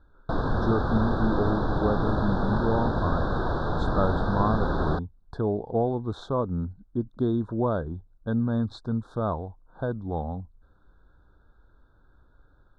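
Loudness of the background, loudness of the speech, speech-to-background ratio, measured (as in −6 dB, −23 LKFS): −28.5 LKFS, −29.0 LKFS, −0.5 dB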